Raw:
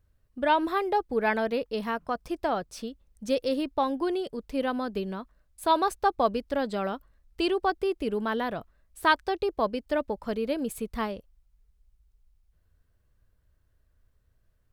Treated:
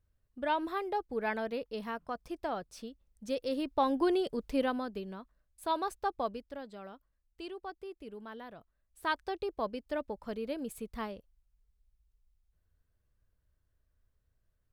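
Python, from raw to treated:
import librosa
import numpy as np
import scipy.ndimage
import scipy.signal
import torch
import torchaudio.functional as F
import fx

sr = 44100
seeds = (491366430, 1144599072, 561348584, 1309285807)

y = fx.gain(x, sr, db=fx.line((3.39, -8.0), (3.98, 0.0), (4.52, 0.0), (5.0, -9.0), (6.18, -9.0), (6.68, -17.0), (8.58, -17.0), (9.27, -8.0)))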